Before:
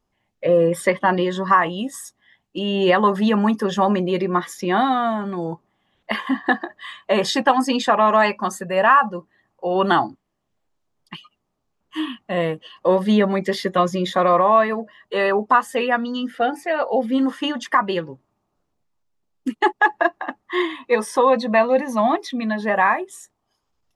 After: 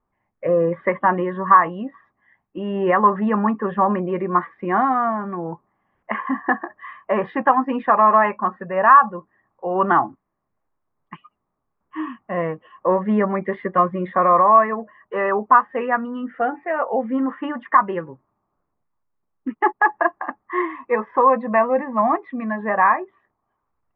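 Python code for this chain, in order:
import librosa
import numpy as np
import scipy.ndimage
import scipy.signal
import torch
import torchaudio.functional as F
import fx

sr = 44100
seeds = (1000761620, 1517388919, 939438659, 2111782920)

y = scipy.signal.sosfilt(scipy.signal.butter(6, 2200.0, 'lowpass', fs=sr, output='sos'), x)
y = fx.peak_eq(y, sr, hz=1100.0, db=7.0, octaves=0.58)
y = F.gain(torch.from_numpy(y), -2.5).numpy()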